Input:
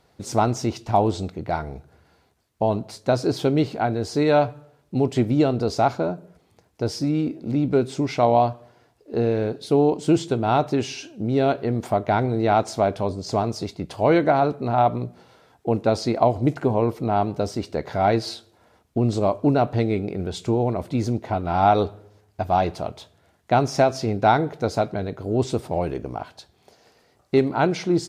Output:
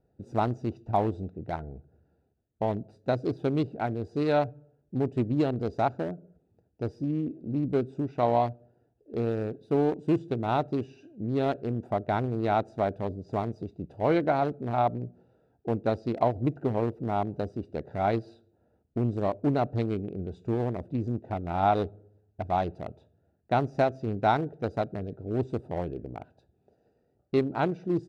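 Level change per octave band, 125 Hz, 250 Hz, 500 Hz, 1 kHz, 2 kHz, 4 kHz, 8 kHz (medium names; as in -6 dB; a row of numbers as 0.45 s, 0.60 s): -6.0 dB, -6.5 dB, -7.0 dB, -7.0 dB, -7.5 dB, -12.5 dB, under -25 dB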